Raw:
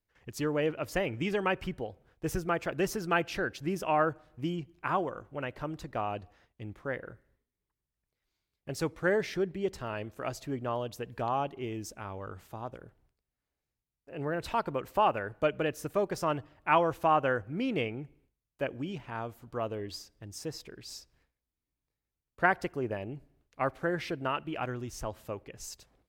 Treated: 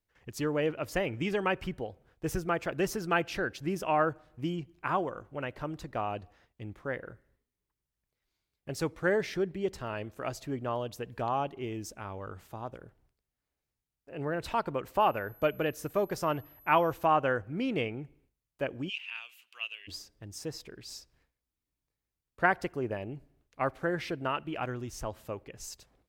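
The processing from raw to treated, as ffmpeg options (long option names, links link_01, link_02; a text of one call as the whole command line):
ffmpeg -i in.wav -filter_complex "[0:a]asettb=1/sr,asplit=3[link_01][link_02][link_03];[link_01]atrim=end=15.004[link_04];[link_02]atrim=start=15:end=17.05,asetpts=PTS-STARTPTS,afade=type=in:duration=0.004:curve=qsin,afade=type=out:start_time=2.046:duration=0.004:curve=qsin,aeval=exprs='val(0)+0.00158*sin(2*PI*12000*n/s)':channel_layout=same[link_05];[link_03]atrim=start=17.046[link_06];[link_04][link_05]acrossfade=duration=0.004:curve1=hsin:curve2=qsin[link_07];[link_07][link_06]acrossfade=duration=0.004:curve1=qsin:curve2=hsin,asplit=3[link_08][link_09][link_10];[link_08]afade=type=out:start_time=18.88:duration=0.02[link_11];[link_09]highpass=frequency=2700:width_type=q:width=9.9,afade=type=in:start_time=18.88:duration=0.02,afade=type=out:start_time=19.87:duration=0.02[link_12];[link_10]afade=type=in:start_time=19.87:duration=0.02[link_13];[link_11][link_12][link_13]amix=inputs=3:normalize=0" out.wav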